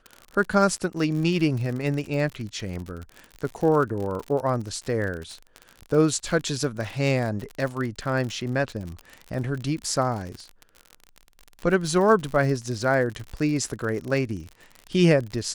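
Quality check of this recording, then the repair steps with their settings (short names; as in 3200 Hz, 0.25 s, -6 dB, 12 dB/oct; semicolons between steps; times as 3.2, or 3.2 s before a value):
crackle 54/s -30 dBFS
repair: de-click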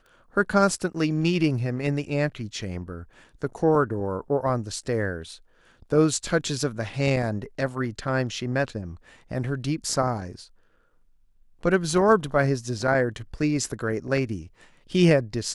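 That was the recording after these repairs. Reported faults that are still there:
none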